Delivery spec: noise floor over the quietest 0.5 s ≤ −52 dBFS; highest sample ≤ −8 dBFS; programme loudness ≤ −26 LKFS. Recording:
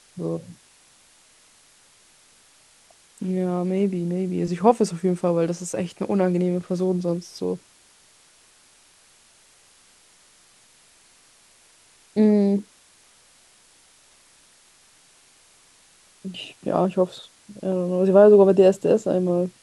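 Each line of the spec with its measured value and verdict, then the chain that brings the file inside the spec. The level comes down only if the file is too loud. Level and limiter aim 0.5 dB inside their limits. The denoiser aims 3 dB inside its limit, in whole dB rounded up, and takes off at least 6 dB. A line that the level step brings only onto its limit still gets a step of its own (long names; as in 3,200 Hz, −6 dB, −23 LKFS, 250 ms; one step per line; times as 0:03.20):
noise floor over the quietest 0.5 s −56 dBFS: in spec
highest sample −2.5 dBFS: out of spec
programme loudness −21.5 LKFS: out of spec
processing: level −5 dB
brickwall limiter −8.5 dBFS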